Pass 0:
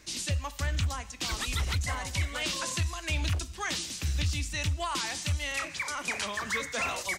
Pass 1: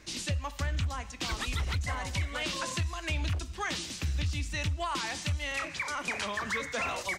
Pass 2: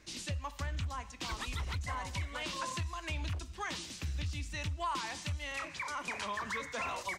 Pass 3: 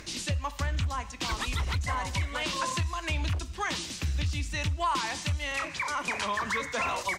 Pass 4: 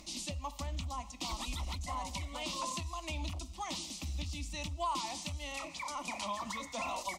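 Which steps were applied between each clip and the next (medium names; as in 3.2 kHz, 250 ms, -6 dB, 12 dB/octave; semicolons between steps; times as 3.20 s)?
treble shelf 4.8 kHz -9 dB; compression 2:1, threshold -33 dBFS, peak gain reduction 5 dB; trim +2.5 dB
dynamic bell 1 kHz, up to +7 dB, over -54 dBFS, Q 4.6; trim -6 dB
upward compressor, threshold -48 dBFS; trim +7.5 dB
static phaser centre 430 Hz, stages 6; trim -4 dB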